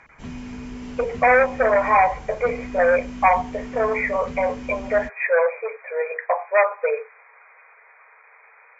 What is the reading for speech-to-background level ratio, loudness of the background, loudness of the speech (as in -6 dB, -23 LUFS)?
15.0 dB, -36.0 LUFS, -21.0 LUFS